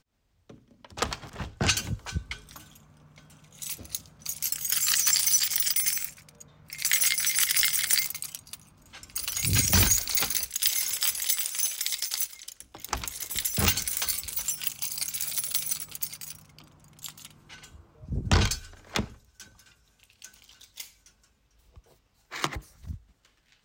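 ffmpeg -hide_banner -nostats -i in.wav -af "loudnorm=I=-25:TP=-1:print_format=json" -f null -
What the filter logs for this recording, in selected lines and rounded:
"input_i" : "-25.9",
"input_tp" : "-7.1",
"input_lra" : "17.2",
"input_thresh" : "-38.3",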